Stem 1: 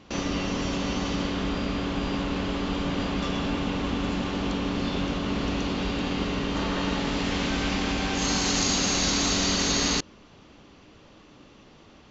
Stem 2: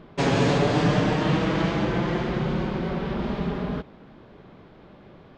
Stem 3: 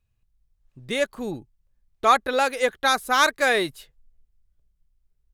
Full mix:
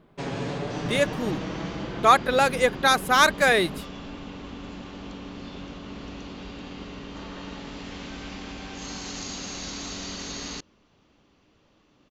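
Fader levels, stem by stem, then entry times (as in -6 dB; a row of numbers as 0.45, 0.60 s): -11.0, -10.0, +1.0 dB; 0.60, 0.00, 0.00 s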